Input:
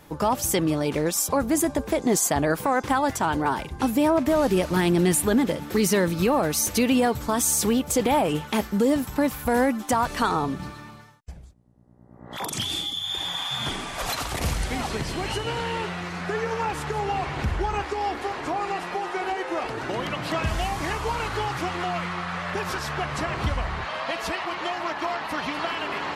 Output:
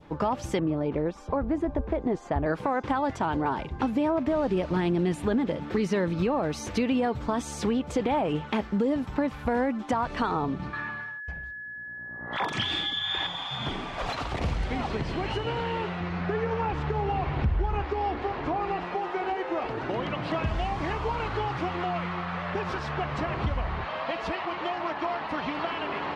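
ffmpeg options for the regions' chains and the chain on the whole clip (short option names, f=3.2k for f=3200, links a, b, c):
-filter_complex "[0:a]asettb=1/sr,asplit=3[a][b][c];[a]atrim=end=0.594[d];[b]atrim=start=0.59:end=2.46,asetpts=PTS-STARTPTS,afade=t=in:d=0.004:c=qsin,afade=t=out:st=1.866:d=0.004:c=qsin,lowpass=f=1k:p=1,asubboost=boost=11:cutoff=66[e];[c]atrim=start=2.456[f];[d][e]acrossfade=d=0.004:c1=hsin:c2=qsin[g];[g][f]acrossfade=d=0.004:c1=qsin:c2=hsin,asettb=1/sr,asplit=3[h][i][j];[h]atrim=end=10.734[k];[i]atrim=start=10.73:end=13.27,asetpts=PTS-STARTPTS,afade=t=in:d=0.004:c=qsin,afade=t=out:st=2.536:d=0.004:c=qsin,aeval=exprs='val(0)+0.00708*sin(2*PI*1700*n/s)':c=same,equalizer=f=1.7k:w=0.61:g=10.5[l];[j]atrim=start=13.266[m];[k][l]acrossfade=d=0.004:c1=hsin:c2=qsin[n];[n][m]acrossfade=d=0.004:c1=qsin:c2=hsin,asettb=1/sr,asplit=3[o][p][q];[o]atrim=end=16.004[r];[p]atrim=start=16:end=18.85,asetpts=PTS-STARTPTS,afade=t=in:d=0.004:c=qsin,afade=t=out:st=2.846:d=0.004:c=qsin,lowpass=6.1k,lowshelf=f=120:g=10[s];[q]atrim=start=18.846[t];[r][s]acrossfade=d=0.004:c1=hsin:c2=qsin[u];[u][t]acrossfade=d=0.004:c1=qsin:c2=hsin,lowpass=2.9k,adynamicequalizer=threshold=0.0112:dfrequency=1700:dqfactor=1.1:tfrequency=1700:tqfactor=1.1:attack=5:release=100:ratio=0.375:range=2:mode=cutabove:tftype=bell,acompressor=threshold=-24dB:ratio=2.5"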